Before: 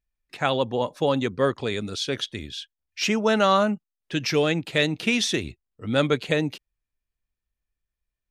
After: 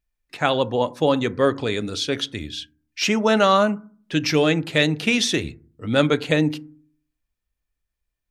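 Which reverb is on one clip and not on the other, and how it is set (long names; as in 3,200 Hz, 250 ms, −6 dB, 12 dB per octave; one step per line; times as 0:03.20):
feedback delay network reverb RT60 0.45 s, low-frequency decay 1.45×, high-frequency decay 0.35×, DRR 14 dB
level +3 dB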